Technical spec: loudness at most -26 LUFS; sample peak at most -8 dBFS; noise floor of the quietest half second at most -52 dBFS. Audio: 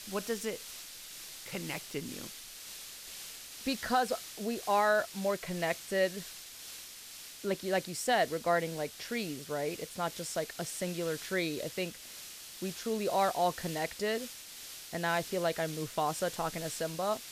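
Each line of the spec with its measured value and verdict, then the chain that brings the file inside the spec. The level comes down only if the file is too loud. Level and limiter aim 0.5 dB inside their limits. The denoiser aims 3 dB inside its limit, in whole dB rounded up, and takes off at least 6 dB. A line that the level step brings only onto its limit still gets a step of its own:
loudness -34.5 LUFS: OK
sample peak -17.0 dBFS: OK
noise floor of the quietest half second -48 dBFS: fail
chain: denoiser 7 dB, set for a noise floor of -48 dBFS

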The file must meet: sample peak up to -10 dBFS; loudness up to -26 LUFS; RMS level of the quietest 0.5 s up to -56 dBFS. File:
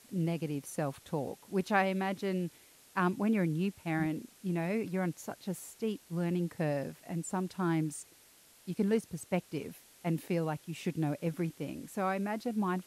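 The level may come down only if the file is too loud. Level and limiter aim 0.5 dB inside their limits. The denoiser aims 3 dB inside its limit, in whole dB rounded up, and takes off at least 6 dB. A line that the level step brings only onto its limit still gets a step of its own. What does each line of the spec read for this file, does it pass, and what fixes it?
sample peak -14.5 dBFS: OK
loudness -34.5 LUFS: OK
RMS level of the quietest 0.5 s -61 dBFS: OK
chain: none

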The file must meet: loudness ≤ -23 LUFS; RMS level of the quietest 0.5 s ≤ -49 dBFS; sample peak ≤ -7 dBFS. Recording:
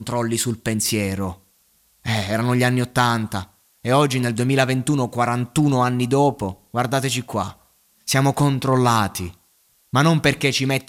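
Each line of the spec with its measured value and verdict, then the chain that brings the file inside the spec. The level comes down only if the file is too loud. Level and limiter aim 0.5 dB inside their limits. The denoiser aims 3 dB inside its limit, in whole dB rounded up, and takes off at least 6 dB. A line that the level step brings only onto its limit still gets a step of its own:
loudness -20.5 LUFS: fail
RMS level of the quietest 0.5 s -60 dBFS: OK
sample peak -2.0 dBFS: fail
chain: gain -3 dB; limiter -7.5 dBFS

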